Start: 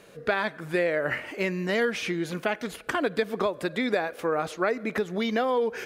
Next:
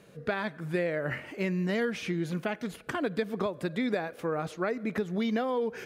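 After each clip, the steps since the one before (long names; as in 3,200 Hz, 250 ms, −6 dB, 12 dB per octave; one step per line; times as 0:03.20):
parametric band 140 Hz +10 dB 1.8 octaves
level −6.5 dB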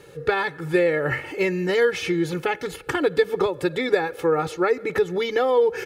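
comb filter 2.3 ms, depth 91%
level +7 dB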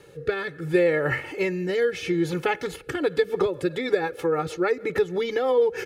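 rotating-speaker cabinet horn 0.7 Hz, later 6.3 Hz, at 0:02.68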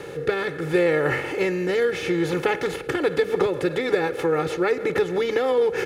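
compressor on every frequency bin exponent 0.6
level −1.5 dB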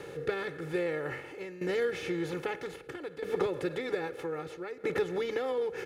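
shaped tremolo saw down 0.62 Hz, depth 80%
level −7.5 dB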